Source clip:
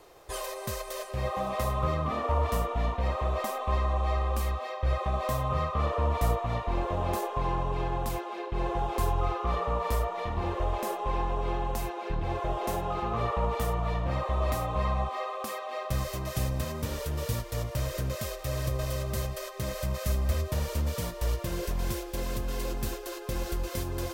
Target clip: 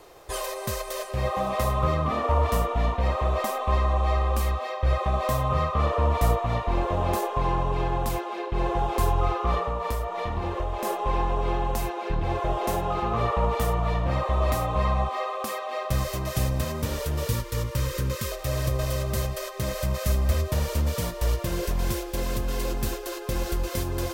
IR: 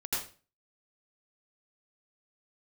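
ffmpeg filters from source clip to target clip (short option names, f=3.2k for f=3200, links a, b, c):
-filter_complex "[0:a]asettb=1/sr,asplit=3[a][b][c];[a]atrim=end=9.584[d];[b]atrim=start=9.58:end=10.85,asetpts=PTS-STARTPTS,afade=t=in:d=0.004:c=qsin,afade=t=out:st=1.266:d=0.004:c=qsin,acompressor=threshold=-29dB:ratio=6[e];[c]atrim=start=10.846[f];[d][e]acrossfade=d=0.004:c1=hsin:c2=qsin[g];[g][f]acrossfade=d=0.004:c1=qsin:c2=hsin,asettb=1/sr,asplit=3[h][i][j];[h]atrim=end=17.274[k];[i]atrim=start=17.27:end=18.32,asetpts=PTS-STARTPTS,afade=t=in:d=0.004:c=qsin,afade=t=out:st=1.046:d=0.004:c=qsin,asuperstop=centerf=700:order=12:qfactor=2.9[l];[j]atrim=start=18.316[m];[k][l]acrossfade=d=0.004:c1=hsin:c2=qsin[n];[n][m]acrossfade=d=0.004:c1=qsin:c2=hsin,volume=4.5dB"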